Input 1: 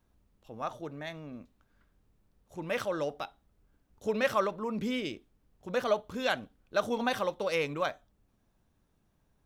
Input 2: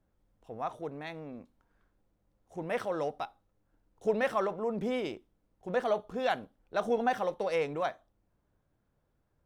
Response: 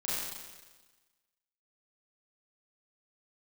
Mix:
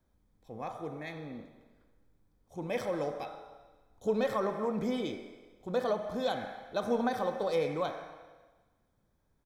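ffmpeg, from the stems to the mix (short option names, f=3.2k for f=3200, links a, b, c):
-filter_complex "[0:a]volume=-4.5dB[a];[1:a]adelay=0.3,volume=-7.5dB,asplit=2[b][c];[c]volume=-5.5dB[d];[2:a]atrim=start_sample=2205[e];[d][e]afir=irnorm=-1:irlink=0[f];[a][b][f]amix=inputs=3:normalize=0,acrossover=split=460[g][h];[h]acompressor=threshold=-30dB:ratio=6[i];[g][i]amix=inputs=2:normalize=0,asuperstop=centerf=2800:order=12:qfactor=7.7"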